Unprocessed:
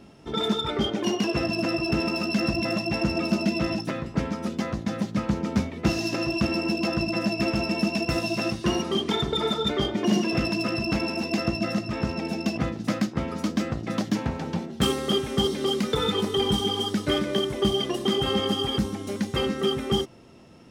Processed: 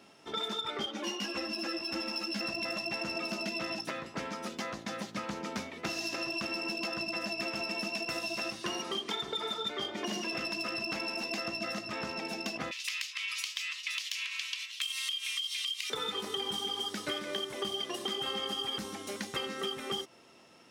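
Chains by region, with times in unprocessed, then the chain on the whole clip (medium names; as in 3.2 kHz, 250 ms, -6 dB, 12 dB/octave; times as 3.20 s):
0.86–2.41 s: comb 3.6 ms, depth 67% + three-phase chorus
12.71–15.90 s: resonant high shelf 1.9 kHz +10.5 dB, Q 3 + compression, threshold -25 dBFS + brick-wall FIR high-pass 990 Hz
whole clip: high-pass 1 kHz 6 dB/octave; compression, threshold -32 dBFS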